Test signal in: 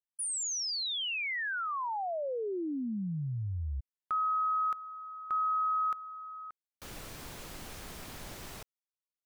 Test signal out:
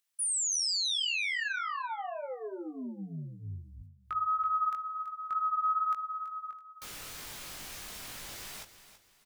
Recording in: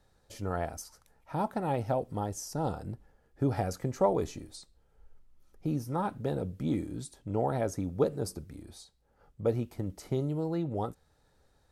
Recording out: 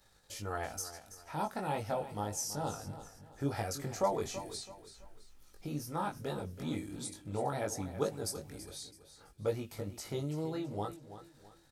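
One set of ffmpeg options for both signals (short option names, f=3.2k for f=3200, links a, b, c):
-filter_complex "[0:a]agate=range=-32dB:threshold=-58dB:ratio=3:release=75:detection=peak,tiltshelf=f=1.1k:g=-6,asplit=2[a][b];[b]acompressor=mode=upward:threshold=-33dB:ratio=2.5:attack=1.6:release=151:knee=2.83:detection=peak,volume=-3dB[c];[a][c]amix=inputs=2:normalize=0,flanger=delay=19:depth=2.3:speed=2.2,aecho=1:1:330|660|990:0.224|0.0784|0.0274,volume=-3.5dB"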